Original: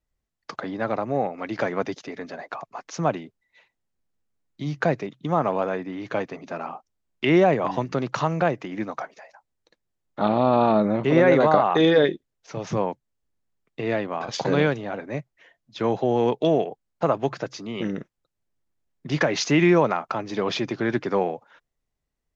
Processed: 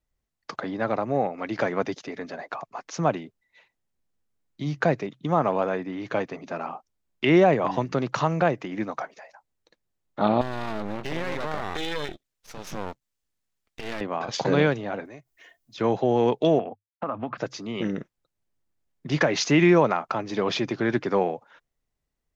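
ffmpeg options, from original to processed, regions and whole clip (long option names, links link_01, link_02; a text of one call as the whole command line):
ffmpeg -i in.wav -filter_complex "[0:a]asettb=1/sr,asplit=3[link_01][link_02][link_03];[link_01]atrim=end=10.414[link_04];[link_02]atrim=start=10.41:end=14.01,asetpts=PTS-STARTPTS,afade=type=in:duration=0.004:curve=qsin,afade=type=out:start_time=3.596:duration=0.004:curve=qsin,tiltshelf=frequency=1300:gain=-5.5,acompressor=threshold=-23dB:ratio=4:attack=3.2:release=140:knee=1:detection=peak,aeval=exprs='max(val(0),0)':channel_layout=same[link_05];[link_03]atrim=start=14.006[link_06];[link_04][link_05]acrossfade=duration=0.004:curve1=hsin:curve2=qsin[link_07];[link_07][link_06]acrossfade=duration=0.004:curve1=qsin:curve2=hsin,asettb=1/sr,asplit=3[link_08][link_09][link_10];[link_08]atrim=end=15.054[link_11];[link_09]atrim=start=15.05:end=15.78,asetpts=PTS-STARTPTS,afade=type=in:duration=0.004:curve=qsin,afade=type=out:start_time=0.726:duration=0.004:curve=qsin,aecho=1:1:2.8:0.41,atrim=end_sample=32193,acompressor=threshold=-47dB:ratio=2.5:attack=3.2:release=140:knee=1:detection=peak,aemphasis=mode=production:type=50kf[link_12];[link_10]atrim=start=15.776[link_13];[link_11][link_12]acrossfade=duration=0.004:curve1=hsin:curve2=qsin[link_14];[link_14][link_13]acrossfade=duration=0.004:curve1=qsin:curve2=hsin,asettb=1/sr,asplit=3[link_15][link_16][link_17];[link_15]atrim=end=16.594[link_18];[link_16]atrim=start=16.59:end=17.38,asetpts=PTS-STARTPTS,afade=type=in:duration=0.004:curve=qsin,afade=type=out:start_time=0.786:duration=0.004:curve=qsin,agate=range=-33dB:threshold=-39dB:ratio=3:release=100:detection=peak,highpass=100,equalizer=frequency=100:width_type=q:width=4:gain=10,equalizer=frequency=150:width_type=q:width=4:gain=-10,equalizer=frequency=240:width_type=q:width=4:gain=9,equalizer=frequency=400:width_type=q:width=4:gain=-9,equalizer=frequency=1200:width_type=q:width=4:gain=7,equalizer=frequency=1900:width_type=q:width=4:gain=-4,lowpass=frequency=2800:width=0.5412,lowpass=frequency=2800:width=1.3066,acompressor=threshold=-25dB:ratio=5:attack=3.2:release=140:knee=1:detection=peak[link_19];[link_17]atrim=start=17.376[link_20];[link_18][link_19]acrossfade=duration=0.004:curve1=hsin:curve2=qsin[link_21];[link_21][link_20]acrossfade=duration=0.004:curve1=qsin:curve2=hsin" out.wav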